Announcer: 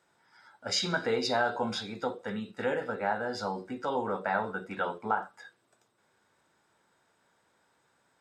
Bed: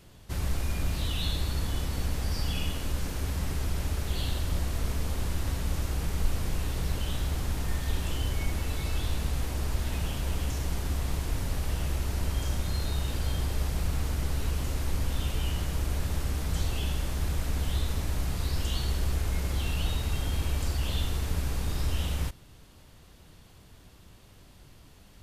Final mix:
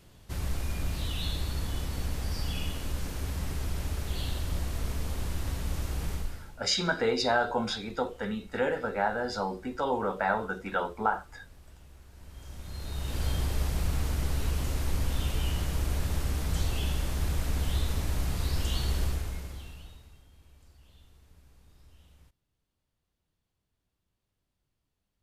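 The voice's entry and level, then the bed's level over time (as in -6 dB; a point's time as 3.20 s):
5.95 s, +2.0 dB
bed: 6.13 s -2.5 dB
6.62 s -23 dB
12.09 s -23 dB
13.23 s 0 dB
19.03 s 0 dB
20.28 s -28.5 dB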